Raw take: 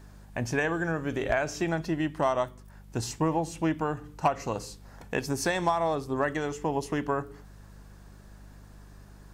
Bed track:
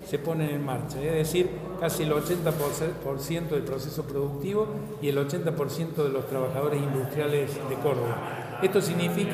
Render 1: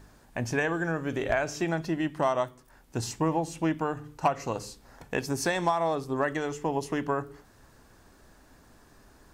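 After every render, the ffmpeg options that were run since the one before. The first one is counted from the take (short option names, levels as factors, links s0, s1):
-af "bandreject=f=50:t=h:w=4,bandreject=f=100:t=h:w=4,bandreject=f=150:t=h:w=4,bandreject=f=200:t=h:w=4"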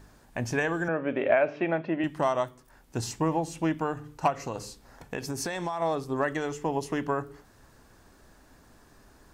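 -filter_complex "[0:a]asettb=1/sr,asplit=3[s0][s1][s2];[s0]atrim=end=0.884[s3];[s1]atrim=start=0.88:end=2.04,asetpts=PTS-STARTPTS,afade=t=in:d=0.004:c=qsin,afade=t=out:st=1.156:d=0.004:c=qsin,highpass=190,equalizer=f=250:t=q:w=4:g=4,equalizer=f=570:t=q:w=4:g=10,equalizer=f=2400:t=q:w=4:g=5,lowpass=f=2900:w=0.5412,lowpass=f=2900:w=1.3066[s4];[s2]atrim=start=2.036[s5];[s3][s4]acrossfade=d=0.004:c1=hsin:c2=qsin[s6];[s6][s5]acrossfade=d=0.004:c1=qsin:c2=hsin,asettb=1/sr,asplit=3[s7][s8][s9];[s7]atrim=end=4.304[s10];[s8]atrim=start=4.3:end=5.82,asetpts=PTS-STARTPTS,afade=t=in:d=0.004:c=qsin,afade=t=out:st=1.516:d=0.004:c=qsin,acompressor=threshold=0.0398:ratio=4:attack=3.2:release=140:knee=1:detection=peak[s11];[s9]atrim=start=5.816[s12];[s10][s11]acrossfade=d=0.004:c1=hsin:c2=qsin[s13];[s13][s12]acrossfade=d=0.004:c1=qsin:c2=hsin"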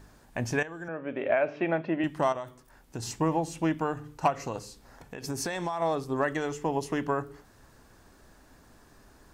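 -filter_complex "[0:a]asettb=1/sr,asplit=3[s0][s1][s2];[s0]atrim=end=2.324[s3];[s1]atrim=start=2.32:end=3.11,asetpts=PTS-STARTPTS,afade=t=in:d=0.004:c=qsin,afade=t=out:st=0.786:d=0.004:c=qsin,acompressor=threshold=0.0282:ratio=12:attack=3.2:release=140:knee=1:detection=peak[s4];[s2]atrim=start=3.106[s5];[s3][s4]acrossfade=d=0.004:c1=hsin:c2=qsin[s6];[s6][s5]acrossfade=d=0.004:c1=qsin:c2=hsin,asettb=1/sr,asplit=3[s7][s8][s9];[s7]atrim=end=4.594[s10];[s8]atrim=start=4.59:end=5.24,asetpts=PTS-STARTPTS,afade=t=in:d=0.004:c=qsin,afade=t=out:st=0.646:d=0.004:c=qsin,acompressor=threshold=0.00447:ratio=1.5:attack=3.2:release=140:knee=1:detection=peak[s11];[s9]atrim=start=5.236[s12];[s10][s11]acrossfade=d=0.004:c1=hsin:c2=qsin[s13];[s13][s12]acrossfade=d=0.004:c1=qsin:c2=hsin,asplit=2[s14][s15];[s14]atrim=end=0.63,asetpts=PTS-STARTPTS,afade=t=out:st=0.626:d=0.004:c=hsin:silence=0.177828[s16];[s15]atrim=start=0.63,asetpts=PTS-STARTPTS,afade=t=in:d=1.09:silence=0.177828[s17];[s16][s17]concat=n=2:v=0:a=1"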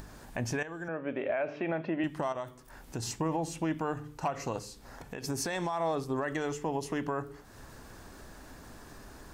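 -af "alimiter=limit=0.075:level=0:latency=1:release=79,acompressor=mode=upward:threshold=0.01:ratio=2.5"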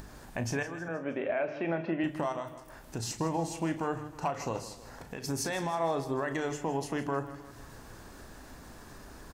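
-filter_complex "[0:a]asplit=2[s0][s1];[s1]adelay=36,volume=0.299[s2];[s0][s2]amix=inputs=2:normalize=0,aecho=1:1:158|316|474|632:0.2|0.0938|0.0441|0.0207"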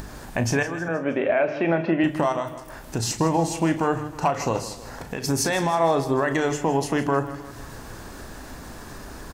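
-af "volume=3.16"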